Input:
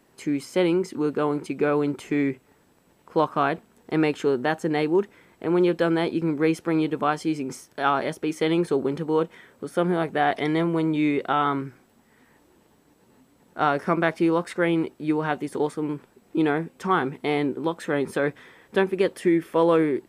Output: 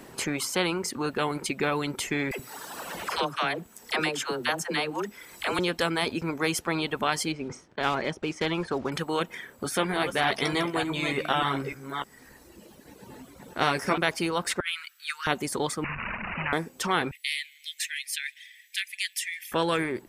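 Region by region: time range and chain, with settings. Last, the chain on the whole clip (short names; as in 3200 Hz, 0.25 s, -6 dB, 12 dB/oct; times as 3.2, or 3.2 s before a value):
2.31–5.59 low shelf 470 Hz -11 dB + dispersion lows, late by 80 ms, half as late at 500 Hz + three-band squash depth 70%
7.32–8.92 block floating point 5-bit + tape spacing loss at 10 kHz 25 dB
9.64–13.98 reverse delay 0.298 s, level -10 dB + doubler 15 ms -7 dB
14.6–15.27 elliptic high-pass 1400 Hz, stop band 50 dB + negative-ratio compressor -34 dBFS, ratio -0.5
15.84–16.53 delta modulation 64 kbps, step -30 dBFS + elliptic band-stop 210–950 Hz + careless resampling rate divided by 8×, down none, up filtered
17.11–19.52 steep high-pass 1900 Hz 72 dB/oct + thin delay 0.156 s, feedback 59%, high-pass 2400 Hz, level -20.5 dB
whole clip: reverb removal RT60 1.6 s; spectral compressor 2:1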